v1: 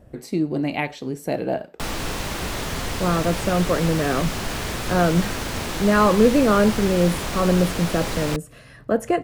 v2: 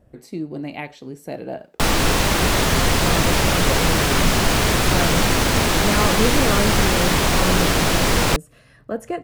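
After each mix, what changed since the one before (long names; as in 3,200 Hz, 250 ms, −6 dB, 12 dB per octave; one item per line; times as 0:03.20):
speech −6.0 dB
background +10.0 dB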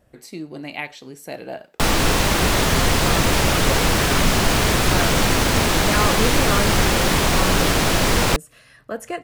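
speech: add tilt shelving filter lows −6 dB, about 810 Hz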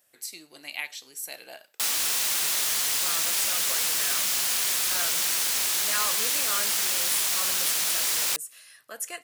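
speech +7.0 dB
master: add first difference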